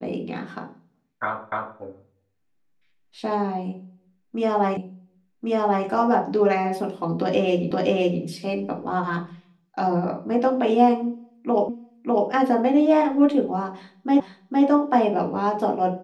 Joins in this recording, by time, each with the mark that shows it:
1.52 s: repeat of the last 0.27 s
4.77 s: repeat of the last 1.09 s
7.71 s: repeat of the last 0.52 s
11.69 s: repeat of the last 0.6 s
14.20 s: repeat of the last 0.46 s

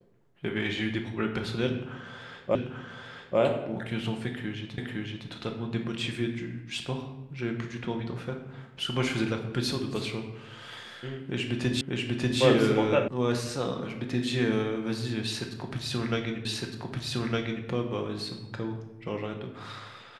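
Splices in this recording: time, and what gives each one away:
2.55 s: repeat of the last 0.84 s
4.78 s: repeat of the last 0.51 s
11.81 s: repeat of the last 0.59 s
13.08 s: sound stops dead
16.45 s: repeat of the last 1.21 s

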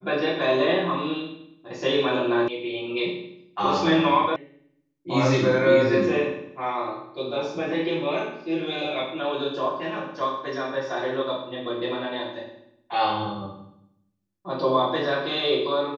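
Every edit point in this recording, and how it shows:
2.48 s: sound stops dead
4.36 s: sound stops dead

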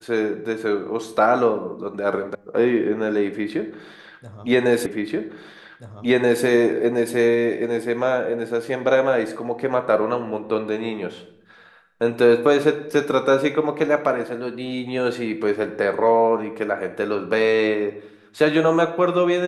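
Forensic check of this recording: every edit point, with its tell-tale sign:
2.35 s: sound stops dead
4.86 s: repeat of the last 1.58 s

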